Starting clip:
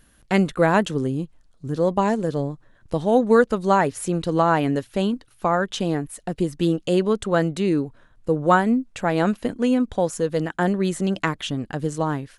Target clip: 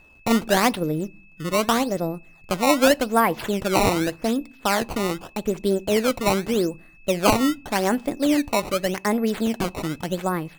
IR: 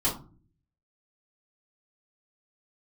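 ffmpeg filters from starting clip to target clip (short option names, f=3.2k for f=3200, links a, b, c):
-filter_complex "[0:a]acrusher=samples=18:mix=1:aa=0.000001:lfo=1:lforange=28.8:lforate=0.72,asetrate=51597,aresample=44100,aeval=exprs='val(0)+0.00282*sin(2*PI*2600*n/s)':c=same,asplit=2[a][b];[1:a]atrim=start_sample=2205,asetrate=38808,aresample=44100[c];[b][c]afir=irnorm=-1:irlink=0,volume=-30.5dB[d];[a][d]amix=inputs=2:normalize=0,volume=-1dB"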